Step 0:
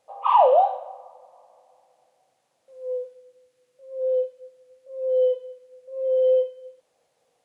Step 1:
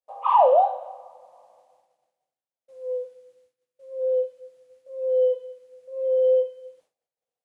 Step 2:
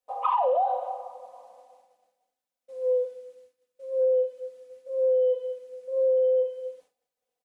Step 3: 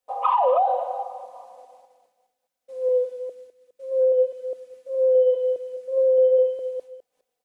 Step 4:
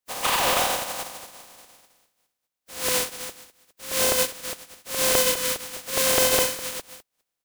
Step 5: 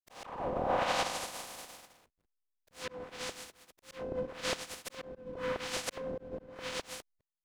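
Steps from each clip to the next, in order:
expander -54 dBFS; dynamic bell 2.9 kHz, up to -5 dB, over -37 dBFS, Q 0.81
comb 4 ms, depth 81%; peak limiter -14 dBFS, peak gain reduction 11 dB; compression 5:1, threshold -23 dBFS, peak gain reduction 6.5 dB; trim +2 dB
chunks repeated in reverse 206 ms, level -10 dB; trim +4 dB
spectral contrast reduction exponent 0.23; trim -2.5 dB
low-pass that closes with the level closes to 360 Hz, closed at -17 dBFS; slow attack 660 ms; hysteresis with a dead band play -57.5 dBFS; trim +3.5 dB

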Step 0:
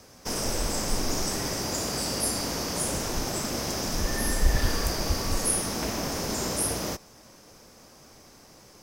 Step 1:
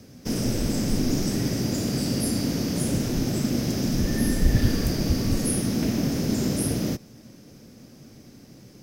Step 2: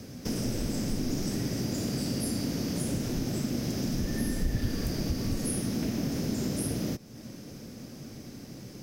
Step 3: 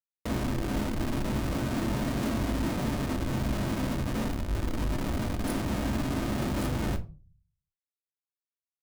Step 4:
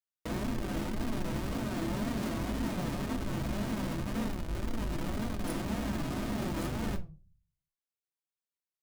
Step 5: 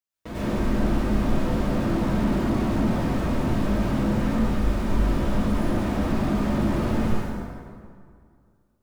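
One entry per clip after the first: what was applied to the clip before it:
ten-band graphic EQ 125 Hz +10 dB, 250 Hz +10 dB, 1 kHz -10 dB, 8 kHz -5 dB
compression 2:1, threshold -40 dBFS, peak gain reduction 14.5 dB; trim +4 dB
Schmitt trigger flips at -30.5 dBFS; reverberation RT60 0.35 s, pre-delay 3 ms, DRR 4.5 dB
flange 1.9 Hz, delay 4.1 ms, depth 2.2 ms, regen +46%
plate-style reverb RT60 2.2 s, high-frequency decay 0.6×, pre-delay 85 ms, DRR -10 dB; slew-rate limiter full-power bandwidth 39 Hz

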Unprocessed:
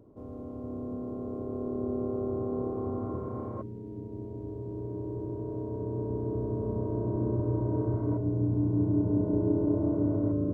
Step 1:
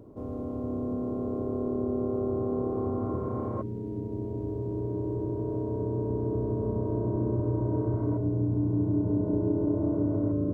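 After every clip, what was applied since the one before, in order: compression 2:1, threshold -35 dBFS, peak gain reduction 7.5 dB; trim +6.5 dB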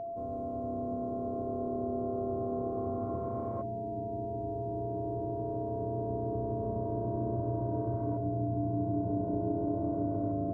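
whistle 680 Hz -30 dBFS; trim -6 dB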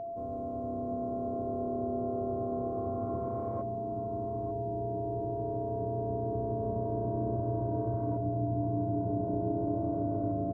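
delay 894 ms -12.5 dB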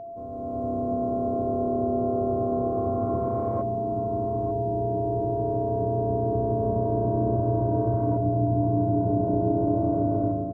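level rider gain up to 8 dB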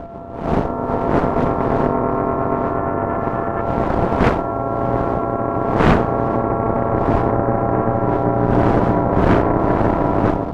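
wind noise 310 Hz -28 dBFS; Chebyshev shaper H 8 -9 dB, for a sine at -5.5 dBFS; trim +2 dB

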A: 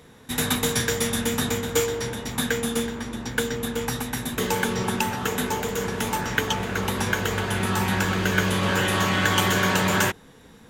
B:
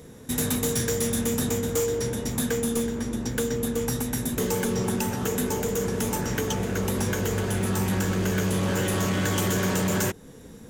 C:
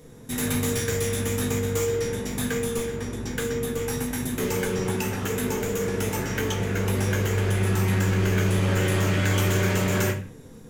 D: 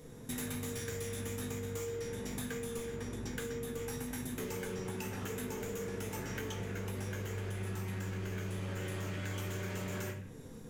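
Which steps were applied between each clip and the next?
high-order bell 1.8 kHz -8.5 dB 2.9 oct; in parallel at +2 dB: compression 5:1, threshold -33 dBFS, peak gain reduction 13.5 dB; on the sum: overload inside the chain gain 19 dB; trim -1.5 dB
dynamic bell 2.2 kHz, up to +7 dB, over -47 dBFS, Q 1.1; simulated room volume 50 m³, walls mixed, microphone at 0.56 m; trim -4.5 dB
compression 6:1, threshold -33 dBFS, peak gain reduction 13.5 dB; trim -4 dB

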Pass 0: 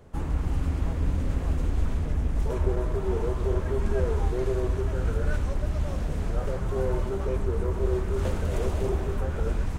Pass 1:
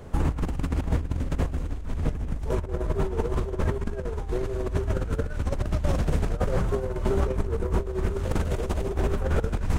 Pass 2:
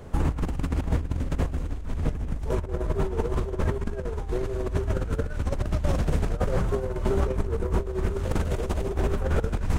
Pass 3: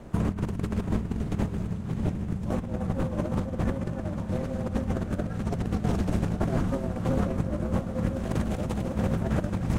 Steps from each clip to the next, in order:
compressor with a negative ratio -29 dBFS, ratio -0.5; trim +4.5 dB
no audible change
ring modulator 140 Hz; echo that smears into a reverb 676 ms, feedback 49%, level -10.5 dB

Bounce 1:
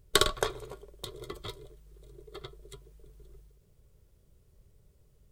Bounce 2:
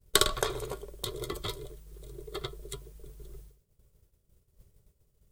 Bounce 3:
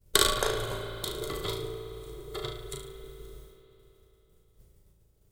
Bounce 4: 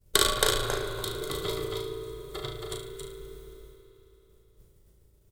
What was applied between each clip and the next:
expander -52 dBFS; treble shelf 6.7 kHz +7 dB; in parallel at -2.5 dB: compressor with a negative ratio -40 dBFS, ratio -1; on the sum: trim -1.5 dB
flutter echo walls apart 6.2 m, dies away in 0.47 s; spring tank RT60 3.5 s, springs 54 ms, chirp 25 ms, DRR 7 dB
delay 273 ms -3.5 dB

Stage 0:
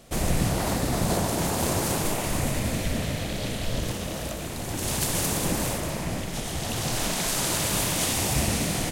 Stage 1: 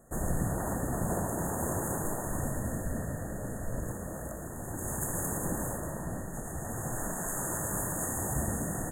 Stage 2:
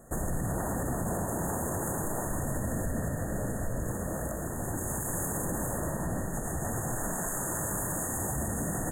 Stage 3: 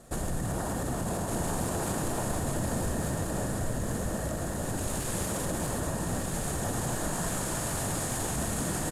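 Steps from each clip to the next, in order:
FFT band-reject 1.9–6.4 kHz; trim -6.5 dB
peak limiter -28.5 dBFS, peak gain reduction 11 dB; trim +5.5 dB
CVSD coder 64 kbps; on a send: delay 1193 ms -4 dB

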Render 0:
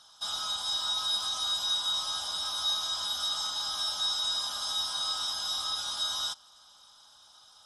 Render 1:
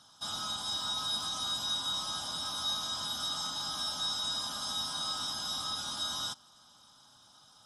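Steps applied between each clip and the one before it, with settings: ten-band graphic EQ 125 Hz +11 dB, 250 Hz +11 dB, 4 kHz -3 dB; trim -1.5 dB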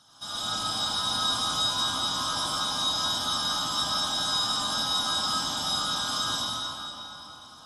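reverberation RT60 3.7 s, pre-delay 67 ms, DRR -9.5 dB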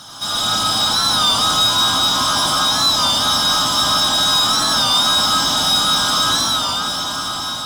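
echo that smears into a reverb 930 ms, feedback 42%, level -10 dB; power-law waveshaper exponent 0.7; warped record 33 1/3 rpm, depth 100 cents; trim +8.5 dB

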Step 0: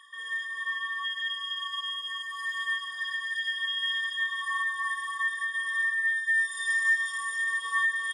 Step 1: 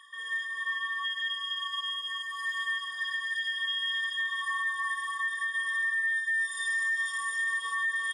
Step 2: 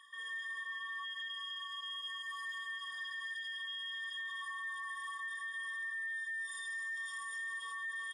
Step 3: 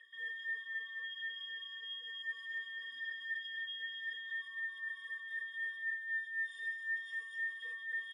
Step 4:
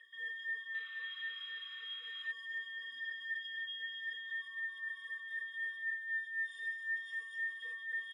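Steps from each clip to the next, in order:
peak limiter -24 dBFS, peak gain reduction 7 dB
peak limiter -30.5 dBFS, peak gain reduction 6.5 dB; trim -5.5 dB
talking filter e-i 3.9 Hz; trim +11 dB
painted sound noise, 0.74–2.32 s, 1.1–4 kHz -60 dBFS

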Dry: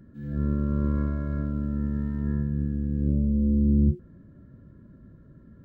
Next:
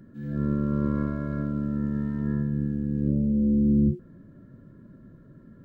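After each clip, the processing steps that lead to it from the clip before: peaking EQ 64 Hz -14 dB 0.9 oct; trim +3 dB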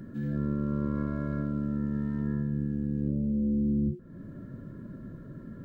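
compression 2.5:1, threshold -38 dBFS, peak gain reduction 13.5 dB; trim +6.5 dB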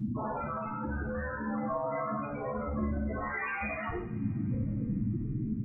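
integer overflow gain 34 dB; loudest bins only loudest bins 8; two-slope reverb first 0.52 s, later 4.7 s, from -28 dB, DRR -5.5 dB; trim +6 dB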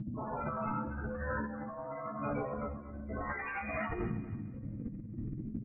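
compressor with a negative ratio -37 dBFS, ratio -0.5; distance through air 270 m; feedback delay 236 ms, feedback 32%, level -15 dB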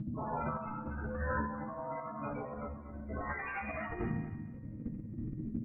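feedback comb 78 Hz, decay 1.2 s, harmonics all, mix 70%; random-step tremolo; trim +10.5 dB

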